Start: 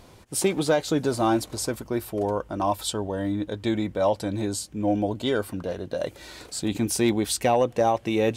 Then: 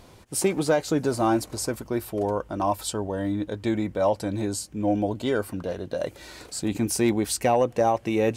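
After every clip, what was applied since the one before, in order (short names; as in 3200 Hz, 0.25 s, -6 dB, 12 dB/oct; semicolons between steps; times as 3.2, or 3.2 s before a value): dynamic EQ 3500 Hz, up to -7 dB, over -50 dBFS, Q 3.2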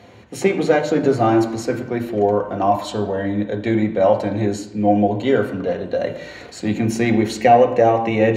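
reverb RT60 0.85 s, pre-delay 3 ms, DRR 4.5 dB; gain -4 dB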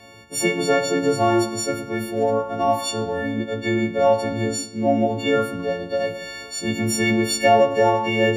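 frequency quantiser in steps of 4 st; gain -3.5 dB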